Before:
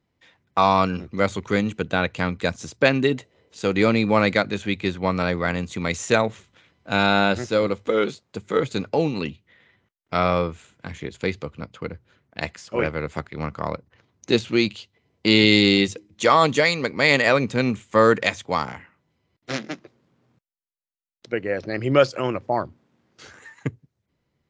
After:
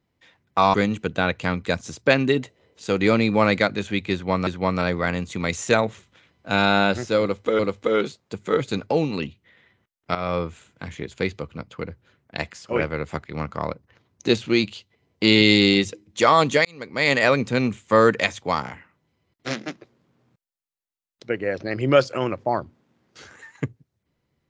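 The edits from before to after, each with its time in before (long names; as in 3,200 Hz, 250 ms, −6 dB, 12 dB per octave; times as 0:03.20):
0:00.74–0:01.49: remove
0:04.88–0:05.22: repeat, 2 plays
0:07.62–0:08.00: repeat, 2 plays
0:10.18–0:10.50: fade in, from −12.5 dB
0:16.68–0:17.24: fade in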